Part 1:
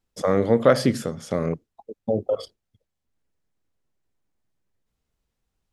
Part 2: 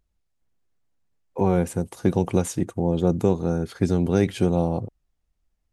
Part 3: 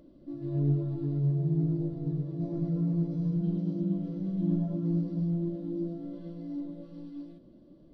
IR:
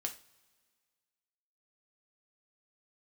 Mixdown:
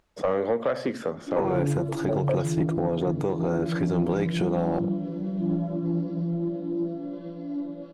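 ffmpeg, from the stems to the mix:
-filter_complex "[0:a]highshelf=f=2.1k:g=-9,acrossover=split=230|1900[a][b][c];[a]acompressor=threshold=-35dB:ratio=4[d];[b]acompressor=threshold=-22dB:ratio=4[e];[c]acompressor=threshold=-39dB:ratio=4[f];[d][e][f]amix=inputs=3:normalize=0,volume=-7.5dB[g];[1:a]acompressor=threshold=-38dB:ratio=2,volume=3dB[h];[2:a]adelay=1000,volume=-3dB[i];[g][h]amix=inputs=2:normalize=0,alimiter=limit=-22dB:level=0:latency=1:release=346,volume=0dB[j];[i][j]amix=inputs=2:normalize=0,asplit=2[k][l];[l]highpass=f=720:p=1,volume=22dB,asoftclip=type=tanh:threshold=-11dB[m];[k][m]amix=inputs=2:normalize=0,lowpass=f=1.7k:p=1,volume=-6dB"

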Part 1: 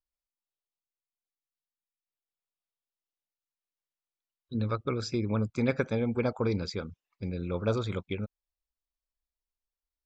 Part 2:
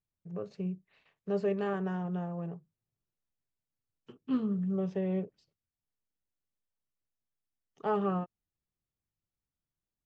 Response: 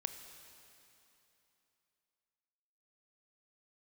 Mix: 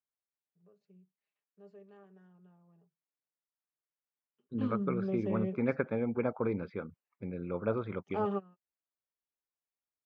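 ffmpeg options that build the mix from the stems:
-filter_complex "[0:a]lowpass=f=2.2k:w=0.5412,lowpass=f=2.2k:w=1.3066,volume=-2.5dB,asplit=2[a][b];[1:a]aecho=1:1:4.9:0.53,adelay=300,volume=-5.5dB[c];[b]apad=whole_len=456719[d];[c][d]sidechaingate=range=-22dB:threshold=-52dB:ratio=16:detection=peak[e];[a][e]amix=inputs=2:normalize=0,highpass=150"

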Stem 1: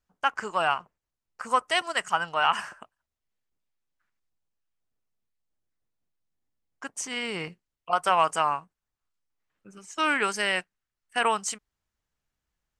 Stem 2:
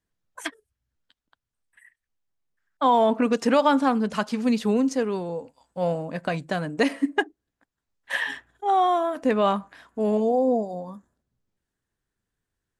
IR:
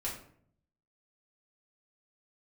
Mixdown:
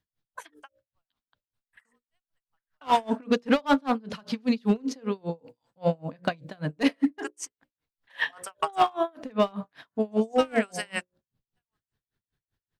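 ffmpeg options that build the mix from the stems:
-filter_complex "[0:a]highpass=f=310:p=1,highshelf=f=11k:g=11.5,adelay=400,volume=0.5dB[a];[1:a]equalizer=f=125:t=o:w=1:g=7,equalizer=f=4k:t=o:w=1:g=6,equalizer=f=8k:t=o:w=1:g=-10,volume=2.5dB,asplit=2[b][c];[c]apad=whole_len=582019[d];[a][d]sidechaingate=range=-56dB:threshold=-48dB:ratio=16:detection=peak[e];[e][b]amix=inputs=2:normalize=0,bandreject=f=60:t=h:w=6,bandreject=f=120:t=h:w=6,bandreject=f=180:t=h:w=6,bandreject=f=240:t=h:w=6,bandreject=f=300:t=h:w=6,bandreject=f=360:t=h:w=6,bandreject=f=420:t=h:w=6,bandreject=f=480:t=h:w=6,bandreject=f=540:t=h:w=6,bandreject=f=600:t=h:w=6,asoftclip=type=hard:threshold=-12dB,aeval=exprs='val(0)*pow(10,-32*(0.5-0.5*cos(2*PI*5.1*n/s))/20)':c=same"

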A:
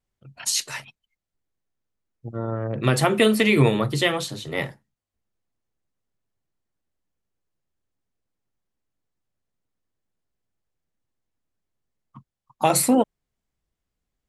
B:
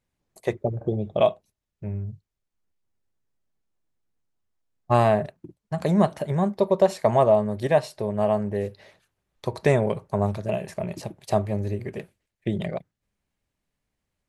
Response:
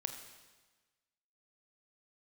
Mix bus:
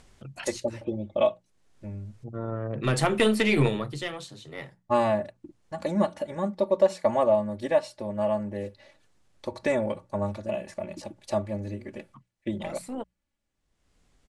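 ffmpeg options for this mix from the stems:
-filter_complex "[0:a]acompressor=mode=upward:threshold=-29dB:ratio=2.5,aeval=exprs='0.668*(cos(1*acos(clip(val(0)/0.668,-1,1)))-cos(1*PI/2))+0.0668*(cos(4*acos(clip(val(0)/0.668,-1,1)))-cos(4*PI/2))':c=same,volume=-4dB,afade=t=out:st=3.55:d=0.44:silence=0.398107[a];[1:a]bandreject=f=740:w=12,aecho=1:1:3.5:0.87,volume=-6dB,asplit=2[b][c];[c]apad=whole_len=629802[d];[a][d]sidechaincompress=threshold=-39dB:ratio=6:attack=16:release=438[e];[e][b]amix=inputs=2:normalize=0,lowpass=f=10k:w=0.5412,lowpass=f=10k:w=1.3066,bandreject=f=60:t=h:w=6,bandreject=f=120:t=h:w=6,bandreject=f=180:t=h:w=6"

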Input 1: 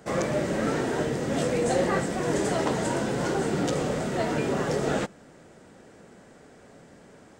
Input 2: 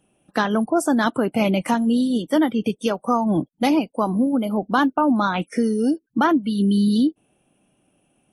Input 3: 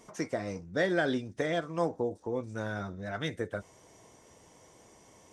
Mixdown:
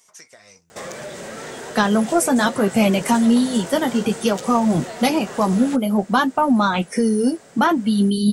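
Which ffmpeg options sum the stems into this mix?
-filter_complex "[0:a]lowshelf=f=230:g=-10,acompressor=threshold=-38dB:ratio=2.5,asoftclip=type=tanh:threshold=-30.5dB,adelay=700,volume=0dB[a];[1:a]flanger=delay=7.4:depth=4.5:regen=-40:speed=0.59:shape=triangular,lowshelf=f=330:g=4.5,adelay=1400,volume=0dB[b];[2:a]tiltshelf=f=800:g=-9.5,acompressor=threshold=-34dB:ratio=6,volume=-14.5dB[c];[a][b][c]amix=inputs=3:normalize=0,highshelf=f=4.5k:g=9.5,acontrast=30,equalizer=f=300:t=o:w=0.22:g=-10.5"

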